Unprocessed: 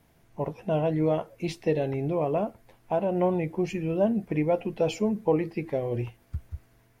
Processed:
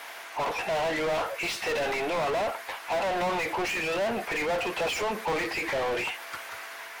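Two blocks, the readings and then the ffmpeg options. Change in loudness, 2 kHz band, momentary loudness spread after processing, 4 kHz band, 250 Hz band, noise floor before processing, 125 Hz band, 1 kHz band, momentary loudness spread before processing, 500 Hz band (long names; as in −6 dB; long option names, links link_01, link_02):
−1.0 dB, +14.0 dB, 9 LU, +12.0 dB, −9.5 dB, −62 dBFS, −14.0 dB, +5.0 dB, 11 LU, −2.5 dB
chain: -filter_complex "[0:a]highpass=950,asplit=2[link_01][link_02];[link_02]highpass=frequency=720:poles=1,volume=39dB,asoftclip=type=tanh:threshold=-21dB[link_03];[link_01][link_03]amix=inputs=2:normalize=0,lowpass=frequency=2800:poles=1,volume=-6dB"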